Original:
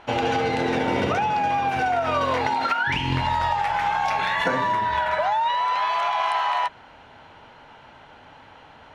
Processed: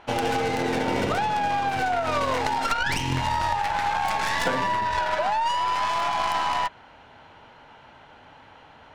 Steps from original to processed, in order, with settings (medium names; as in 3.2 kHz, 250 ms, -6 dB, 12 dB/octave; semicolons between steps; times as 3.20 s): tracing distortion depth 0.2 ms; trim -2 dB